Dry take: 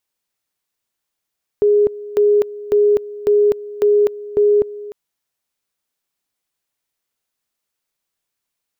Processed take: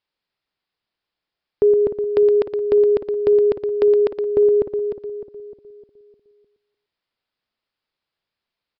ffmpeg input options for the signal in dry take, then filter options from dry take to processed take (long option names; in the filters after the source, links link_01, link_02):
-f lavfi -i "aevalsrc='pow(10,(-9.5-18*gte(mod(t,0.55),0.25))/20)*sin(2*PI*414*t)':duration=3.3:sample_rate=44100"
-filter_complex "[0:a]asplit=2[link_01][link_02];[link_02]aecho=0:1:117:0.355[link_03];[link_01][link_03]amix=inputs=2:normalize=0,aresample=11025,aresample=44100,asplit=2[link_04][link_05];[link_05]adelay=304,lowpass=frequency=1000:poles=1,volume=-9dB,asplit=2[link_06][link_07];[link_07]adelay=304,lowpass=frequency=1000:poles=1,volume=0.5,asplit=2[link_08][link_09];[link_09]adelay=304,lowpass=frequency=1000:poles=1,volume=0.5,asplit=2[link_10][link_11];[link_11]adelay=304,lowpass=frequency=1000:poles=1,volume=0.5,asplit=2[link_12][link_13];[link_13]adelay=304,lowpass=frequency=1000:poles=1,volume=0.5,asplit=2[link_14][link_15];[link_15]adelay=304,lowpass=frequency=1000:poles=1,volume=0.5[link_16];[link_06][link_08][link_10][link_12][link_14][link_16]amix=inputs=6:normalize=0[link_17];[link_04][link_17]amix=inputs=2:normalize=0"